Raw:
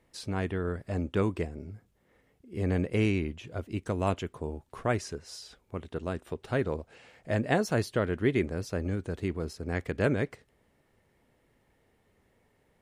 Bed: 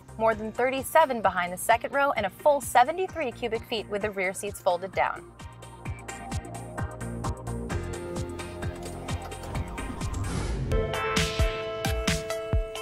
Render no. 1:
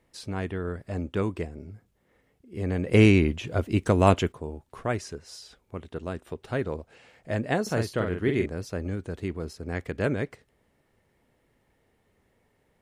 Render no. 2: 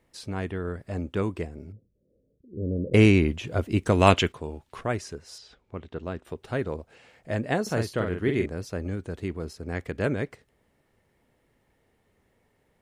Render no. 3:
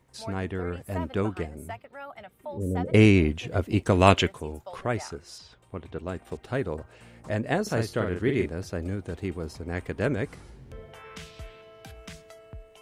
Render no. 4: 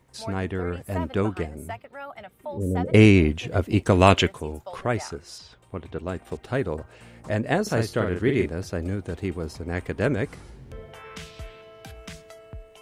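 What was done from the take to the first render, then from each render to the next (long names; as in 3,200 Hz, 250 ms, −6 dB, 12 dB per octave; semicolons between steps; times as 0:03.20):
0:02.87–0:04.32: clip gain +9.5 dB; 0:07.62–0:08.46: double-tracking delay 44 ms −5 dB
0:01.72–0:02.94: elliptic low-pass filter 570 Hz; 0:03.92–0:04.81: parametric band 3,100 Hz +9 dB 2.3 octaves; 0:05.38–0:06.25: low-pass filter 4,900 Hz
mix in bed −17.5 dB
level +3 dB; brickwall limiter −1 dBFS, peak gain reduction 2 dB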